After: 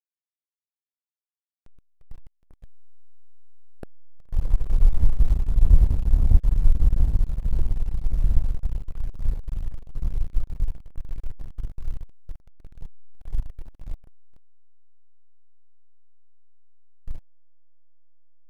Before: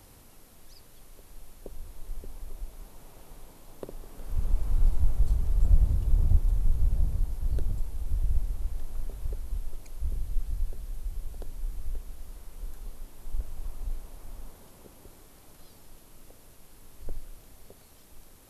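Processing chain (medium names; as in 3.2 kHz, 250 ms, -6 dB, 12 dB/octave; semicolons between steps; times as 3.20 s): echo that smears into a reverb 901 ms, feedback 78%, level -12 dB; dynamic bell 260 Hz, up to -5 dB, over -50 dBFS, Q 1.2; hysteresis with a dead band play -22 dBFS; trim +7 dB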